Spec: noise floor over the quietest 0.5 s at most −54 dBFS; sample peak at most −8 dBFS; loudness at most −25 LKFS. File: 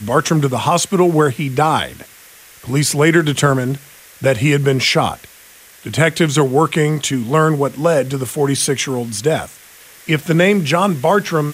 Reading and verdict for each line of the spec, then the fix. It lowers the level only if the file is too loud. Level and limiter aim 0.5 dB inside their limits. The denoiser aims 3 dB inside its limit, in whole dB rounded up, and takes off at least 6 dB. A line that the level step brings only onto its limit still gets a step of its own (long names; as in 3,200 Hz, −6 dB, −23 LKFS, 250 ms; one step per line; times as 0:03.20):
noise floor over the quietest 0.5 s −43 dBFS: out of spec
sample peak −2.0 dBFS: out of spec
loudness −15.5 LKFS: out of spec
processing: broadband denoise 6 dB, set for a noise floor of −43 dBFS
level −10 dB